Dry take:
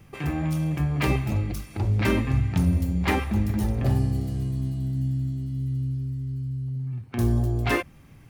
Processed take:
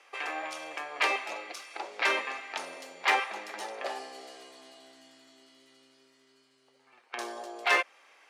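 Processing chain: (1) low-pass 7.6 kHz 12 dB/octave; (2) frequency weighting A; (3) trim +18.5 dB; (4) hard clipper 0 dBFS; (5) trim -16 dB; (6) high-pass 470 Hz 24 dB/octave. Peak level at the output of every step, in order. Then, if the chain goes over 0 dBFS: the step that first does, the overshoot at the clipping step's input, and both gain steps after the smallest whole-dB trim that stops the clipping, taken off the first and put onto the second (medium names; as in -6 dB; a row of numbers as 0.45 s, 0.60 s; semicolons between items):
-10.5 dBFS, -12.0 dBFS, +6.5 dBFS, 0.0 dBFS, -16.0 dBFS, -12.5 dBFS; step 3, 6.5 dB; step 3 +11.5 dB, step 5 -9 dB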